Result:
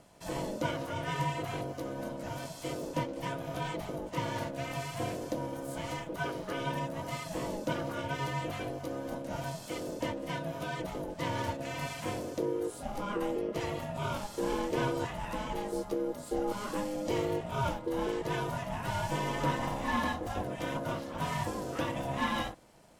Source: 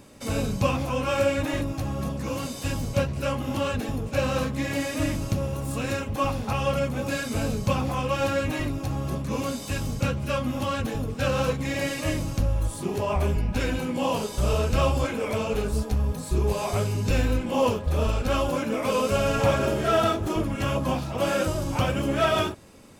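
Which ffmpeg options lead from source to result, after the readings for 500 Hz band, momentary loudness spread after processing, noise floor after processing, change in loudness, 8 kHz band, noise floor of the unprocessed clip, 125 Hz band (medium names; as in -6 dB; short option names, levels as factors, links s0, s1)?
-9.0 dB, 6 LU, -46 dBFS, -9.0 dB, -9.5 dB, -36 dBFS, -12.0 dB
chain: -af "aeval=exprs='val(0)*sin(2*PI*410*n/s)':c=same,volume=0.473"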